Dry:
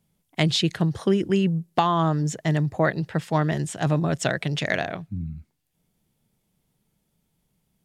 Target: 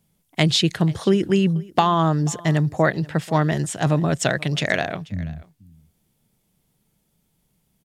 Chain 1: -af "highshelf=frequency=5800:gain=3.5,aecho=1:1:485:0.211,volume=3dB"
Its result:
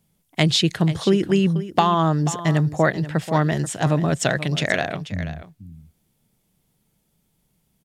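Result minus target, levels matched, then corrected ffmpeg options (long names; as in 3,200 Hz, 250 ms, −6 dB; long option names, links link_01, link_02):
echo-to-direct +8.5 dB
-af "highshelf=frequency=5800:gain=3.5,aecho=1:1:485:0.0794,volume=3dB"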